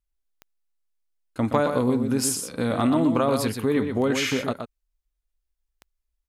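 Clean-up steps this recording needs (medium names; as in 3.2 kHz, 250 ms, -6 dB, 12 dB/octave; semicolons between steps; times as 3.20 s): de-click; inverse comb 122 ms -7 dB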